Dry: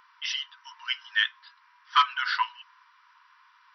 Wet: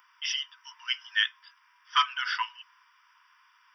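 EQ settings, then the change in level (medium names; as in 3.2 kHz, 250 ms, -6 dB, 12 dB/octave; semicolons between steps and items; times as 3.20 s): Butterworth band-stop 4.1 kHz, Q 3.4; tilt EQ +3.5 dB/octave; -5.0 dB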